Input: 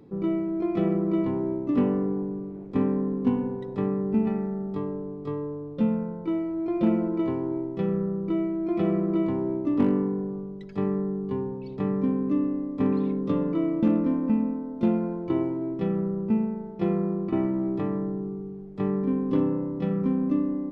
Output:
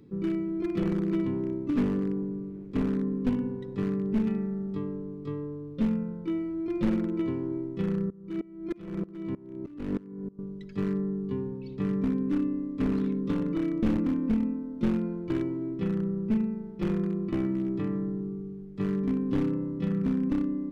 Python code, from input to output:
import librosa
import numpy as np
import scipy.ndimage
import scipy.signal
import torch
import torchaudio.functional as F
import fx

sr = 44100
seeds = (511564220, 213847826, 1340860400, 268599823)

y = np.minimum(x, 2.0 * 10.0 ** (-19.5 / 20.0) - x)
y = fx.peak_eq(y, sr, hz=740.0, db=-13.5, octaves=1.2)
y = fx.tremolo_decay(y, sr, direction='swelling', hz=3.2, depth_db=23, at=(8.1, 10.39))